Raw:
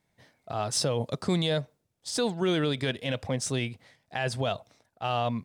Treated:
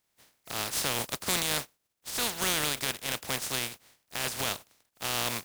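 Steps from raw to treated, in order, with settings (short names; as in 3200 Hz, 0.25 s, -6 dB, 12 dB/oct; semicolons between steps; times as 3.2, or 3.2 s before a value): spectral contrast lowered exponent 0.23; gain -2.5 dB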